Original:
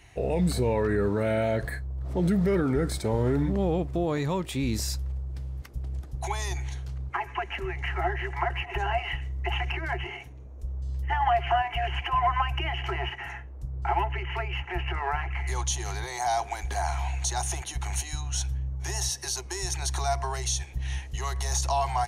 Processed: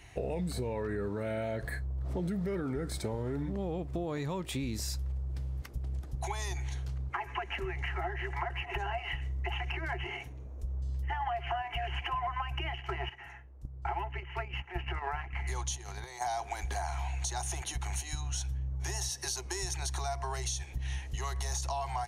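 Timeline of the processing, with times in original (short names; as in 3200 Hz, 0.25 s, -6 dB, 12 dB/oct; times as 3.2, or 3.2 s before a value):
12.27–16.38 gate -31 dBFS, range -11 dB
whole clip: compressor 5:1, threshold -32 dBFS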